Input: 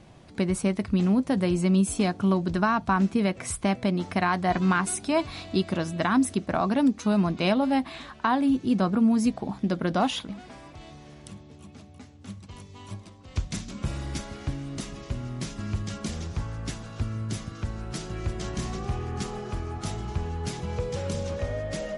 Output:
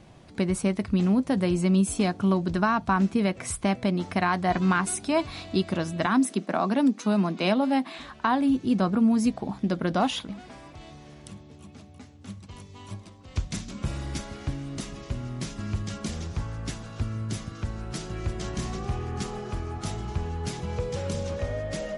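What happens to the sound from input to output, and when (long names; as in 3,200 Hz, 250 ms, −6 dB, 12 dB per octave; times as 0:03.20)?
0:06.06–0:07.99: Butterworth high-pass 170 Hz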